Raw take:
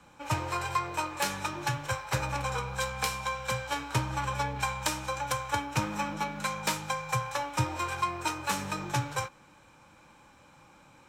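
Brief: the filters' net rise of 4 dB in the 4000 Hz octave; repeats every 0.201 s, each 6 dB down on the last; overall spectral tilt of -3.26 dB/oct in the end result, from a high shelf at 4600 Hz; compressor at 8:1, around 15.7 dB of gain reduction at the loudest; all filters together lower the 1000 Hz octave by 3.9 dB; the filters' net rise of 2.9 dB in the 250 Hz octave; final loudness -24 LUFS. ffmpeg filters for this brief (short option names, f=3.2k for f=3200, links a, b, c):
-af "equalizer=f=250:t=o:g=4.5,equalizer=f=1k:t=o:g=-5,equalizer=f=4k:t=o:g=3.5,highshelf=f=4.6k:g=3.5,acompressor=threshold=-40dB:ratio=8,aecho=1:1:201|402|603|804|1005|1206:0.501|0.251|0.125|0.0626|0.0313|0.0157,volume=18dB"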